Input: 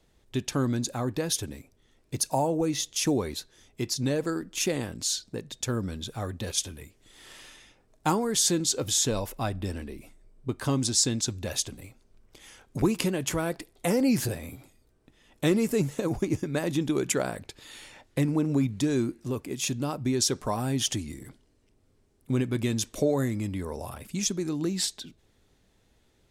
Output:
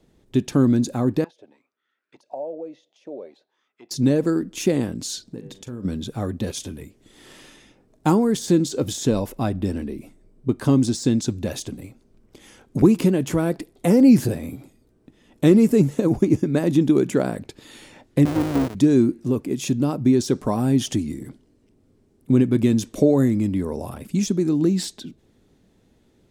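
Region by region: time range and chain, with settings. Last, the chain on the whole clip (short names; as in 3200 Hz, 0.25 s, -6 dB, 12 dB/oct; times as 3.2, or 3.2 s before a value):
1.24–3.91 weighting filter D + compressor 5:1, threshold -23 dBFS + auto-wah 580–1500 Hz, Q 7.1, down, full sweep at -25.5 dBFS
5.24–5.85 de-hum 97.2 Hz, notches 36 + compressor 16:1, threshold -38 dBFS + doubler 41 ms -13.5 dB
18.25–18.75 half-waves squared off + HPF 340 Hz 6 dB/oct + AM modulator 210 Hz, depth 80%
whole clip: de-esser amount 50%; bell 240 Hz +11.5 dB 2.4 oct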